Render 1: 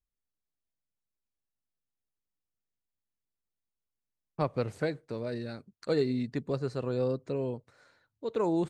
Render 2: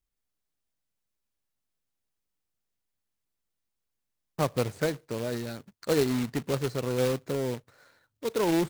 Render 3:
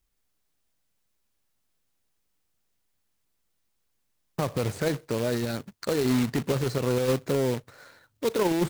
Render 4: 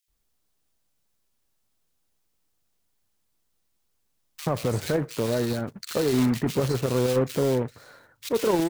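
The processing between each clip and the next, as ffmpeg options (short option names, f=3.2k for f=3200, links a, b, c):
-af "acrusher=bits=2:mode=log:mix=0:aa=0.000001,volume=2.5dB"
-af "alimiter=level_in=2dB:limit=-24dB:level=0:latency=1:release=29,volume=-2dB,volume=8.5dB"
-filter_complex "[0:a]acrossover=split=2000[a][b];[a]adelay=80[c];[c][b]amix=inputs=2:normalize=0,volume=2dB"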